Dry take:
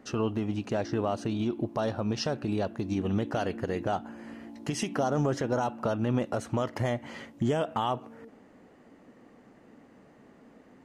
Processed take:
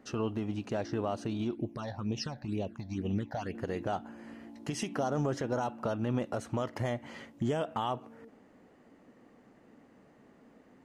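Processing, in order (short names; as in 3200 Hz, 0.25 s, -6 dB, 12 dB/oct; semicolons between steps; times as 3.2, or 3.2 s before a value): 1.55–3.55 phaser stages 8, 2.1 Hz, lowest notch 350–1500 Hz; gain -4 dB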